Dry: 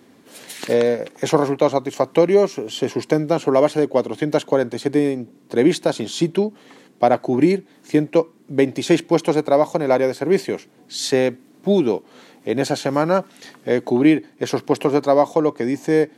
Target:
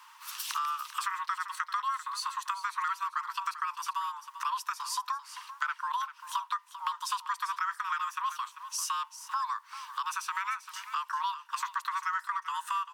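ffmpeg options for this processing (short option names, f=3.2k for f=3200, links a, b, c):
-af "highpass=f=320:w=0.5412,highpass=f=320:w=1.3066,acompressor=threshold=-33dB:ratio=4,afreqshift=470,asetrate=55125,aresample=44100,aecho=1:1:393:0.237"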